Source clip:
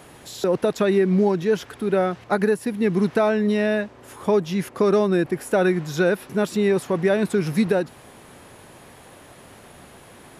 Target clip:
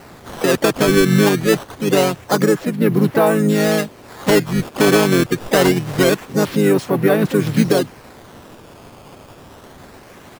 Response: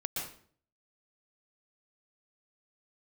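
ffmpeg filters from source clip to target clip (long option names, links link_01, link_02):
-filter_complex "[0:a]acrusher=samples=13:mix=1:aa=0.000001:lfo=1:lforange=20.8:lforate=0.25,asplit=3[link_01][link_02][link_03];[link_02]asetrate=33038,aresample=44100,atempo=1.33484,volume=-4dB[link_04];[link_03]asetrate=55563,aresample=44100,atempo=0.793701,volume=-11dB[link_05];[link_01][link_04][link_05]amix=inputs=3:normalize=0,volume=3.5dB"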